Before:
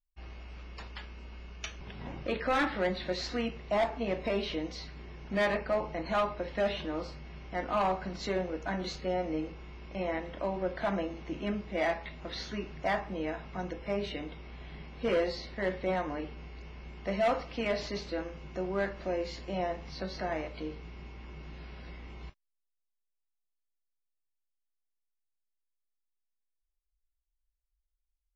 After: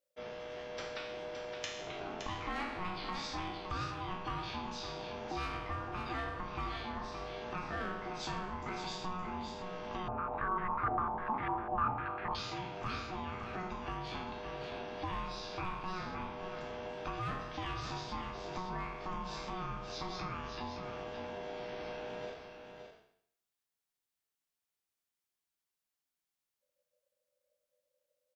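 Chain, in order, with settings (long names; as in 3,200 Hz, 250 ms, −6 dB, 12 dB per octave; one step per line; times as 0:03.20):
peak hold with a decay on every bin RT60 0.67 s
high-pass filter 59 Hz 6 dB per octave
downward compressor 4 to 1, threshold −43 dBFS, peak gain reduction 16.5 dB
ring modulation 550 Hz
single-tap delay 567 ms −7 dB
0:10.08–0:12.35: low-pass on a step sequencer 10 Hz 730–1,900 Hz
level +6 dB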